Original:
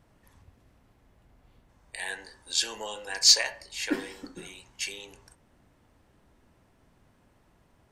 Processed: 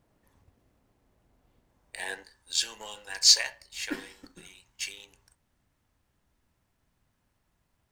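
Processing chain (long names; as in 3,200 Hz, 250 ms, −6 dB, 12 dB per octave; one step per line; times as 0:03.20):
mu-law and A-law mismatch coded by A
parametric band 410 Hz +4.5 dB 2.4 octaves, from 0:02.23 −6.5 dB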